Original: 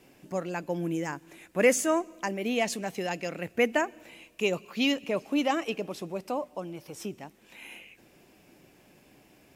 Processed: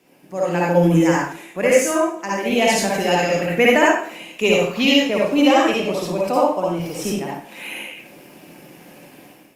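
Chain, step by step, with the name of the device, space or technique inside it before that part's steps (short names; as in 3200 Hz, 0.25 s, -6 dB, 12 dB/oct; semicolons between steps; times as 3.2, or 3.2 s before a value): far-field microphone of a smart speaker (reverb RT60 0.50 s, pre-delay 52 ms, DRR -4.5 dB; HPF 130 Hz 24 dB/oct; AGC gain up to 12 dB; gain -1 dB; Opus 48 kbps 48000 Hz)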